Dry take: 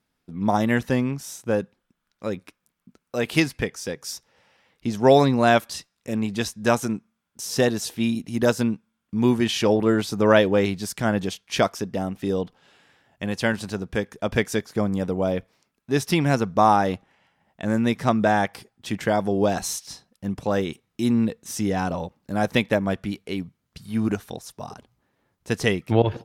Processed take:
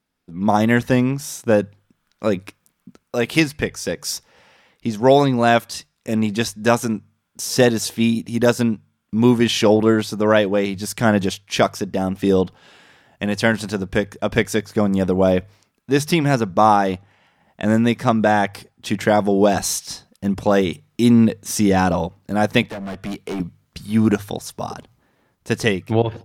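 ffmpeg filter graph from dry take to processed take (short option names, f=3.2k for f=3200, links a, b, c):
-filter_complex "[0:a]asettb=1/sr,asplit=3[a][b][c];[a]atrim=end=22.624[d];[b]atrim=start=22.62:end=23.4,asetpts=PTS-STARTPTS,afade=t=in:d=0.004:c=qsin,afade=t=out:st=0.776:d=0.004:c=qsin,acrossover=split=150|2000[e][f][g];[e]acompressor=threshold=-37dB:ratio=4[h];[f]acompressor=threshold=-25dB:ratio=4[i];[g]acompressor=threshold=-42dB:ratio=4[j];[h][i][j]amix=inputs=3:normalize=0,bandreject=f=570:w=12,volume=31.5dB,asoftclip=hard,volume=-31.5dB[k];[c]atrim=start=23.396[l];[d][k]acrossfade=d=0.004:c1=hsin:c2=qsin[m];[m][l]acrossfade=d=0.004:c1=qsin:c2=hsin,bandreject=f=50:t=h:w=6,bandreject=f=100:t=h:w=6,bandreject=f=150:t=h:w=6,dynaudnorm=f=150:g=5:m=10dB,volume=-1dB"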